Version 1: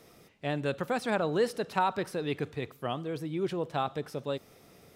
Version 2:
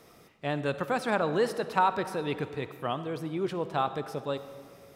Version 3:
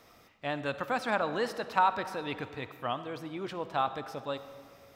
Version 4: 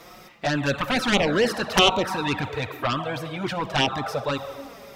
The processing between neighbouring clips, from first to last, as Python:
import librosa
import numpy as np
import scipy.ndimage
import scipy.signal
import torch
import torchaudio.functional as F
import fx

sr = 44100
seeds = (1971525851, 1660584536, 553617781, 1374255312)

y1 = fx.peak_eq(x, sr, hz=1100.0, db=4.5, octaves=1.1)
y1 = fx.rev_freeverb(y1, sr, rt60_s=2.0, hf_ratio=0.55, predelay_ms=25, drr_db=12.0)
y2 = fx.graphic_eq_15(y1, sr, hz=(160, 400, 10000), db=(-9, -8, -8))
y3 = fx.cheby_harmonics(y2, sr, harmonics=(7,), levels_db=(-6,), full_scale_db=-11.0)
y3 = fx.env_flanger(y3, sr, rest_ms=6.4, full_db=-21.5)
y3 = F.gain(torch.from_numpy(y3), 8.0).numpy()